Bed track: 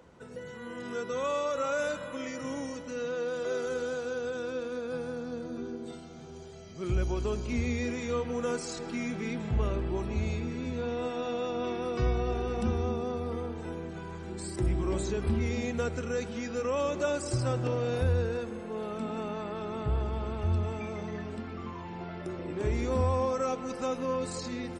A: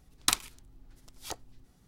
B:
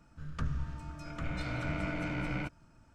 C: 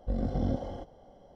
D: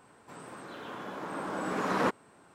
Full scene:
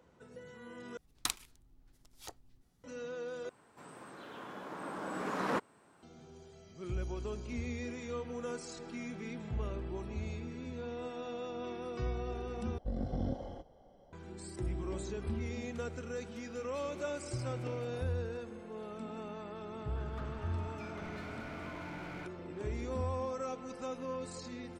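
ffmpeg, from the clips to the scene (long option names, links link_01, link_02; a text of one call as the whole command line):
ffmpeg -i bed.wav -i cue0.wav -i cue1.wav -i cue2.wav -i cue3.wav -filter_complex "[2:a]asplit=2[link_01][link_02];[0:a]volume=-8.5dB[link_03];[link_01]aderivative[link_04];[link_02]asplit=2[link_05][link_06];[link_06]highpass=frequency=720:poles=1,volume=32dB,asoftclip=type=tanh:threshold=-22dB[link_07];[link_05][link_07]amix=inputs=2:normalize=0,lowpass=frequency=1200:poles=1,volume=-6dB[link_08];[link_03]asplit=4[link_09][link_10][link_11][link_12];[link_09]atrim=end=0.974[link_13];[1:a]atrim=end=1.87,asetpts=PTS-STARTPTS,volume=-9dB[link_14];[link_10]atrim=start=2.836:end=3.494[link_15];[4:a]atrim=end=2.54,asetpts=PTS-STARTPTS,volume=-5.5dB[link_16];[link_11]atrim=start=6.026:end=12.784[link_17];[3:a]atrim=end=1.35,asetpts=PTS-STARTPTS,volume=-6dB[link_18];[link_12]atrim=start=14.126[link_19];[link_04]atrim=end=2.94,asetpts=PTS-STARTPTS,volume=-6dB,afade=type=in:duration=0.004:curve=hsin,afade=type=out:start_time=2.936:duration=0.004:curve=hsin,adelay=15370[link_20];[link_08]atrim=end=2.94,asetpts=PTS-STARTPTS,volume=-15dB,afade=type=in:duration=0.004:curve=hsin,afade=type=out:start_time=2.936:duration=0.004:curve=hsin,adelay=19790[link_21];[link_13][link_14]acrossfade=duration=0.004:curve1=hsin:curve2=hsin[link_22];[link_22][link_15]acrossfade=duration=0.004:curve1=hsin:curve2=hsin[link_23];[link_23][link_16]acrossfade=duration=0.004:curve1=hsin:curve2=hsin[link_24];[link_24][link_17]acrossfade=duration=0.004:curve1=hsin:curve2=hsin[link_25];[link_25][link_18]acrossfade=duration=0.004:curve1=hsin:curve2=hsin[link_26];[link_26][link_19]acrossfade=duration=0.004:curve1=hsin:curve2=hsin[link_27];[link_27][link_20][link_21]amix=inputs=3:normalize=0" out.wav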